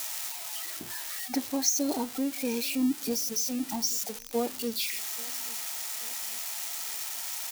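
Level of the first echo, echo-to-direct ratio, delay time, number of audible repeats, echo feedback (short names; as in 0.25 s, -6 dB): -23.5 dB, -22.5 dB, 0.834 s, 2, 47%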